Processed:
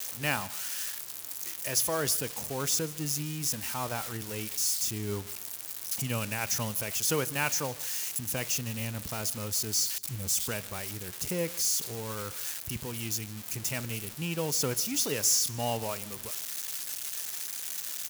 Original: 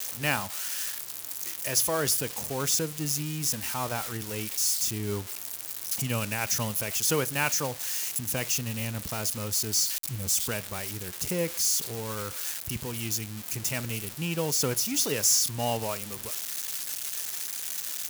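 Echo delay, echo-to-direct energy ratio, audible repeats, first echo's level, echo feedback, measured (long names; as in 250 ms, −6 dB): 153 ms, −21.5 dB, 2, −22.0 dB, 29%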